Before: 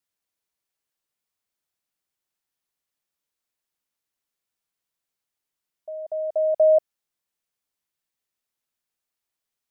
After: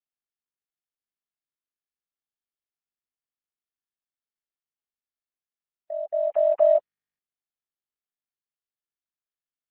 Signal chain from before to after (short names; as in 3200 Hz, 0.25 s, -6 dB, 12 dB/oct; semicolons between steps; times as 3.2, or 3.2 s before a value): sine-wave speech; gate -34 dBFS, range -55 dB; HPF 520 Hz 6 dB/oct; compressor 2:1, threshold -24 dBFS, peak gain reduction 5.5 dB; gain +5.5 dB; Opus 8 kbps 48000 Hz